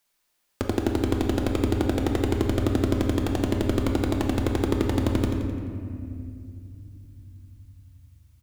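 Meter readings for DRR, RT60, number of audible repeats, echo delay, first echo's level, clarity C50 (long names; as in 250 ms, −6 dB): 0.5 dB, 2.4 s, 2, 86 ms, −8.5 dB, 2.0 dB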